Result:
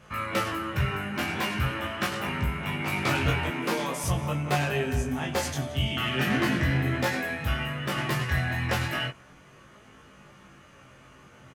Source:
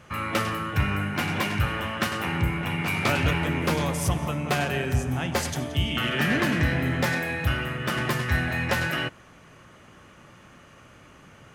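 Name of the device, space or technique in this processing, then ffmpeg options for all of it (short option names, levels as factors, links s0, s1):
double-tracked vocal: -filter_complex "[0:a]asplit=2[s0][s1];[s1]adelay=15,volume=0.562[s2];[s0][s2]amix=inputs=2:normalize=0,flanger=delay=19.5:depth=3.7:speed=0.4,asettb=1/sr,asplit=3[s3][s4][s5];[s3]atrim=end=3.504[s6];[s4]atrim=start=3.5:end=4.04,asetpts=PTS-STARTPTS,afade=t=in:d=0.004:c=qsin,afade=t=out:st=0.536:d=0.004:c=qsin,highpass=f=180:w=0.5412,highpass=f=180:w=1.3066[s7];[s5]atrim=start=4.036[s8];[s6][s7]acrossfade=d=0.004:c1=hsin:c2=qsin[s9];[s9][s8]acrossfade=d=0.004:c1=qsin:c2=hsin"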